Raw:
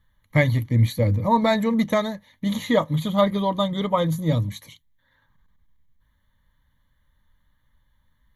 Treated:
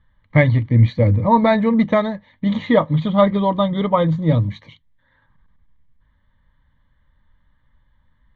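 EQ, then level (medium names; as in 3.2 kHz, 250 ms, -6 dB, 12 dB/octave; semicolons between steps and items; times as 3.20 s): low-pass 3.8 kHz 12 dB/octave; distance through air 180 m; +5.5 dB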